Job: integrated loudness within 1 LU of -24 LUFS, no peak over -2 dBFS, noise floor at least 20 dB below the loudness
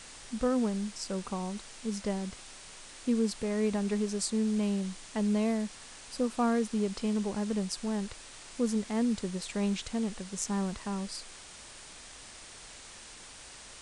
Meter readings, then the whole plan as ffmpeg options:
noise floor -49 dBFS; noise floor target -53 dBFS; loudness -32.5 LUFS; peak level -15.5 dBFS; loudness target -24.0 LUFS
-> -af "afftdn=nr=6:nf=-49"
-af "volume=2.66"

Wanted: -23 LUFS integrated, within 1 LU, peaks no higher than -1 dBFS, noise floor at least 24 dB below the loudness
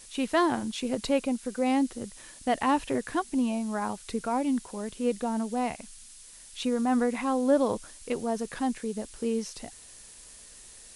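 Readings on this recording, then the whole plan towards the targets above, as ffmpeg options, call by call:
noise floor -50 dBFS; noise floor target -53 dBFS; loudness -29.0 LUFS; peak level -11.5 dBFS; loudness target -23.0 LUFS
-> -af "afftdn=nr=6:nf=-50"
-af "volume=2"

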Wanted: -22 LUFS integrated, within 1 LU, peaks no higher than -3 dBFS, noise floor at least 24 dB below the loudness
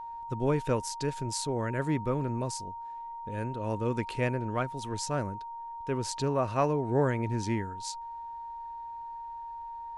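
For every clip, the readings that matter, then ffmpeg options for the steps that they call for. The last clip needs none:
steady tone 930 Hz; tone level -38 dBFS; loudness -32.5 LUFS; peak level -14.5 dBFS; loudness target -22.0 LUFS
-> -af "bandreject=f=930:w=30"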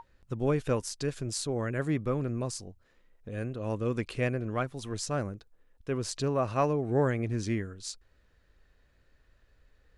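steady tone not found; loudness -32.0 LUFS; peak level -14.5 dBFS; loudness target -22.0 LUFS
-> -af "volume=3.16"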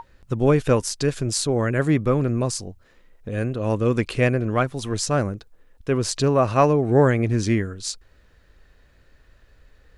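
loudness -22.0 LUFS; peak level -4.5 dBFS; noise floor -57 dBFS

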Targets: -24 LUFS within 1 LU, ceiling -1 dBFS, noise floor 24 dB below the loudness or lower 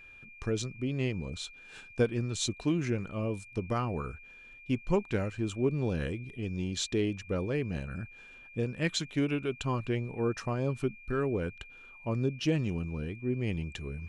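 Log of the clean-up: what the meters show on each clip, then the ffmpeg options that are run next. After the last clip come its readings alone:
steady tone 2.4 kHz; tone level -50 dBFS; loudness -33.0 LUFS; peak level -15.0 dBFS; loudness target -24.0 LUFS
-> -af "bandreject=f=2400:w=30"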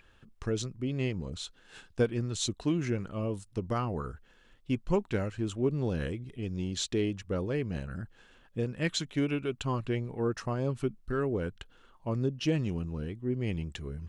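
steady tone not found; loudness -33.0 LUFS; peak level -15.0 dBFS; loudness target -24.0 LUFS
-> -af "volume=2.82"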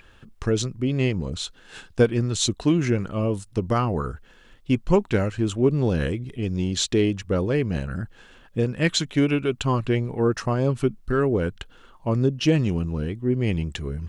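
loudness -24.0 LUFS; peak level -6.0 dBFS; noise floor -52 dBFS

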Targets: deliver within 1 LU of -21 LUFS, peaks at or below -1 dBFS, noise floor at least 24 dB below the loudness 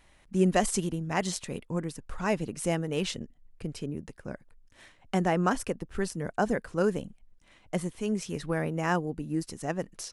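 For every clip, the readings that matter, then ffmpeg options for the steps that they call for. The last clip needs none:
loudness -31.0 LUFS; peak level -9.5 dBFS; loudness target -21.0 LUFS
-> -af "volume=3.16,alimiter=limit=0.891:level=0:latency=1"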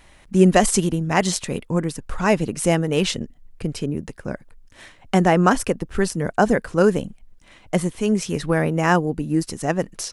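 loudness -21.0 LUFS; peak level -1.0 dBFS; noise floor -52 dBFS

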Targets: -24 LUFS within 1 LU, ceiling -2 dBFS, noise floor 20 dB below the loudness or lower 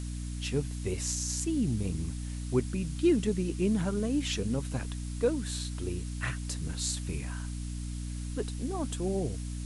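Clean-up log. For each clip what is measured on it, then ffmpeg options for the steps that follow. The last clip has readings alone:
hum 60 Hz; highest harmonic 300 Hz; hum level -34 dBFS; noise floor -37 dBFS; noise floor target -53 dBFS; loudness -32.5 LUFS; peak level -14.5 dBFS; loudness target -24.0 LUFS
-> -af "bandreject=f=60:t=h:w=4,bandreject=f=120:t=h:w=4,bandreject=f=180:t=h:w=4,bandreject=f=240:t=h:w=4,bandreject=f=300:t=h:w=4"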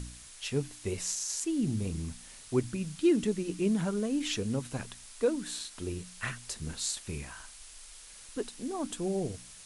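hum not found; noise floor -51 dBFS; noise floor target -53 dBFS
-> -af "afftdn=nr=6:nf=-51"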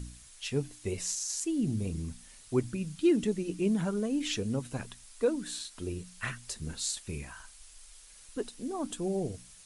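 noise floor -54 dBFS; loudness -33.5 LUFS; peak level -15.5 dBFS; loudness target -24.0 LUFS
-> -af "volume=2.99"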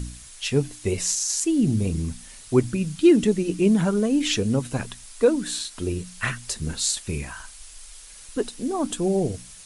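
loudness -23.5 LUFS; peak level -6.0 dBFS; noise floor -45 dBFS

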